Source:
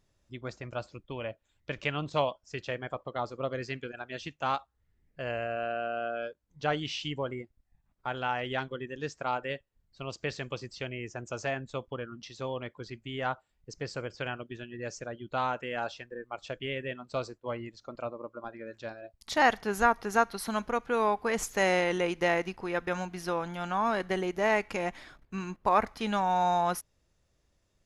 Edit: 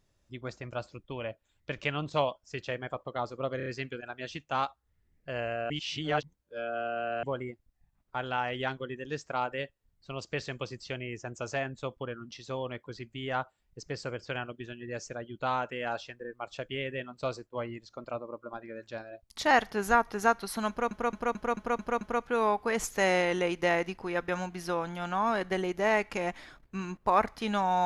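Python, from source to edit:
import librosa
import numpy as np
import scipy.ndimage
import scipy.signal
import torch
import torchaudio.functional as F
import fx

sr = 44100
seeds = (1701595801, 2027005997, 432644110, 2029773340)

y = fx.edit(x, sr, fx.stutter(start_s=3.57, slice_s=0.03, count=4),
    fx.reverse_span(start_s=5.61, length_s=1.53),
    fx.stutter(start_s=20.6, slice_s=0.22, count=7), tone=tone)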